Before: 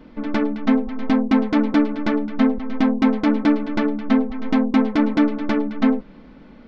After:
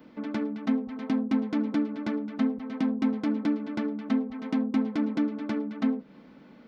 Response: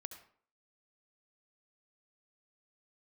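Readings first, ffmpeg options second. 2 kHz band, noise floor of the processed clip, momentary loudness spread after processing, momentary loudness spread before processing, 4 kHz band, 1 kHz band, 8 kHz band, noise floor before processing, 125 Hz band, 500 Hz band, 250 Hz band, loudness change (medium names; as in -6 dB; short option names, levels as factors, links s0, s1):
-12.5 dB, -52 dBFS, 5 LU, 5 LU, -11.0 dB, -13.0 dB, no reading, -44 dBFS, -8.0 dB, -12.0 dB, -8.5 dB, -9.0 dB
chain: -filter_complex "[0:a]highpass=120,acrossover=split=290[s0][s1];[s1]acompressor=threshold=0.0251:ratio=2.5[s2];[s0][s2]amix=inputs=2:normalize=0,aemphasis=mode=production:type=50kf,asplit=2[s3][s4];[1:a]atrim=start_sample=2205,atrim=end_sample=3969,lowpass=3400[s5];[s4][s5]afir=irnorm=-1:irlink=0,volume=0.531[s6];[s3][s6]amix=inputs=2:normalize=0,volume=0.376"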